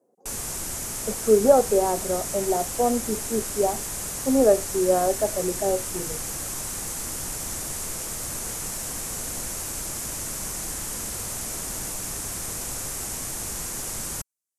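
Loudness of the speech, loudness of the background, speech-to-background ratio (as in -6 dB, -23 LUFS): -23.5 LUFS, -29.5 LUFS, 6.0 dB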